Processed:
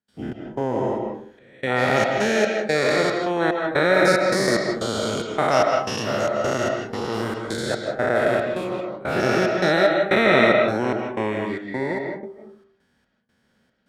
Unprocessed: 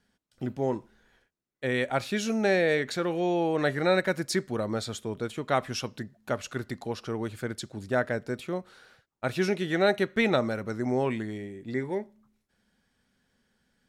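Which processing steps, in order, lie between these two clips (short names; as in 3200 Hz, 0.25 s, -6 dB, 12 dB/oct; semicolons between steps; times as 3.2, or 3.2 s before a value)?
spectral dilation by 0.48 s; HPF 71 Hz; high shelf 4300 Hz -5.5 dB; de-hum 97.69 Hz, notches 5; step gate ".xxx...xxxxx." 184 bpm -24 dB; reverb RT60 0.45 s, pre-delay 0.115 s, DRR 2 dB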